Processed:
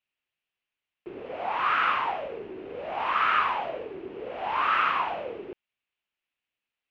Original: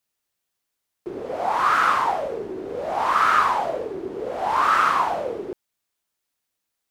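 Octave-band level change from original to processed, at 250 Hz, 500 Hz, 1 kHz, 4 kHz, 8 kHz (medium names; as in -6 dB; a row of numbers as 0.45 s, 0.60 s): -8.0 dB, -7.5 dB, -6.5 dB, -2.0 dB, under -20 dB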